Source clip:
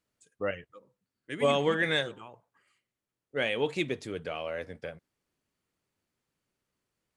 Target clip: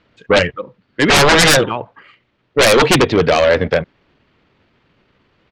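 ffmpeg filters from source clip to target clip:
ffmpeg -i in.wav -af "lowpass=frequency=3700:width=0.5412,lowpass=frequency=3700:width=1.3066,atempo=1.3,aeval=exprs='0.237*sin(PI/2*7.08*val(0)/0.237)':channel_layout=same,volume=6dB" out.wav

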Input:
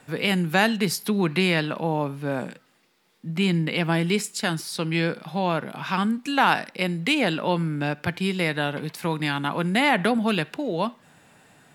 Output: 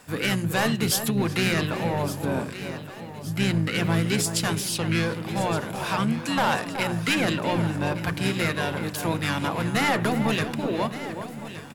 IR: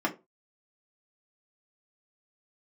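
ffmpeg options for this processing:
-filter_complex "[0:a]bandreject=frequency=60:width_type=h:width=6,bandreject=frequency=120:width_type=h:width=6,bandreject=frequency=180:width_type=h:width=6,bandreject=frequency=240:width_type=h:width=6,bandreject=frequency=300:width_type=h:width=6,bandreject=frequency=360:width_type=h:width=6,bandreject=frequency=420:width_type=h:width=6,bandreject=frequency=480:width_type=h:width=6,bandreject=frequency=540:width_type=h:width=6,bandreject=frequency=600:width_type=h:width=6,asoftclip=type=tanh:threshold=-17.5dB,crystalizer=i=1:c=0,asplit=2[link_01][link_02];[link_02]adelay=374,lowpass=frequency=1400:poles=1,volume=-8dB,asplit=2[link_03][link_04];[link_04]adelay=374,lowpass=frequency=1400:poles=1,volume=0.18,asplit=2[link_05][link_06];[link_06]adelay=374,lowpass=frequency=1400:poles=1,volume=0.18[link_07];[link_03][link_05][link_07]amix=inputs=3:normalize=0[link_08];[link_01][link_08]amix=inputs=2:normalize=0,acontrast=78,asplit=2[link_09][link_10];[link_10]aecho=0:1:1168|2336|3504|4672|5840:0.2|0.0978|0.0479|0.0235|0.0115[link_11];[link_09][link_11]amix=inputs=2:normalize=0,asplit=2[link_12][link_13];[link_13]asetrate=29433,aresample=44100,atempo=1.49831,volume=-5dB[link_14];[link_12][link_14]amix=inputs=2:normalize=0,volume=-7dB"

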